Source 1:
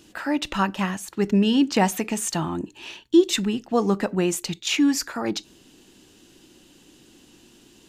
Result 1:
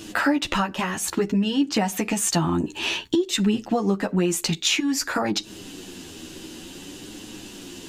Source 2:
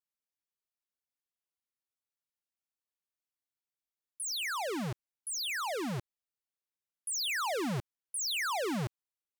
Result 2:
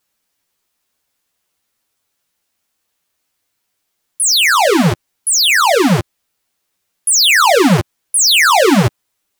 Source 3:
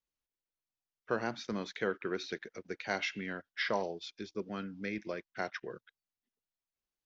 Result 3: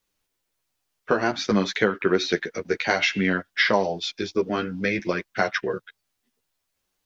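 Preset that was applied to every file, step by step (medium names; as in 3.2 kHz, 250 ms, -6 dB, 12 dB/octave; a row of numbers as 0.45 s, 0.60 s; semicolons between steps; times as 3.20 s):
compression 16:1, threshold -32 dBFS; flange 0.55 Hz, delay 9.3 ms, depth 3.7 ms, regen -2%; peak normalisation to -6 dBFS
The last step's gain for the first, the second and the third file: +16.5 dB, +27.0 dB, +19.0 dB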